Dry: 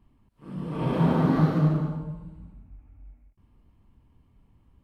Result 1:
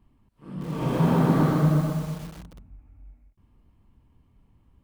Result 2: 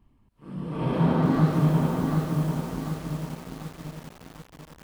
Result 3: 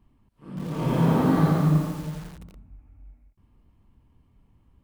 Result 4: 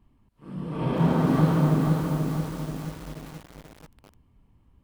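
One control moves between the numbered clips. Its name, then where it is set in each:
feedback echo at a low word length, delay time: 125, 741, 85, 482 milliseconds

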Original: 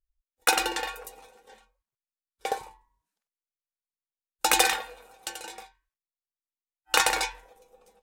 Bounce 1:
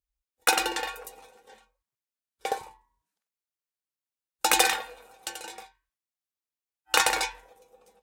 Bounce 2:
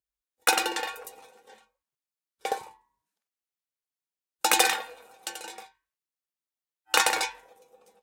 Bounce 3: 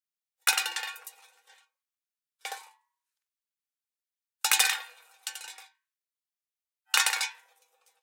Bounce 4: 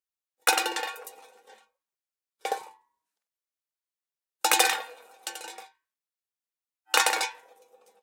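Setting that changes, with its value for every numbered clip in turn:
high-pass filter, corner frequency: 47, 120, 1,400, 320 Hertz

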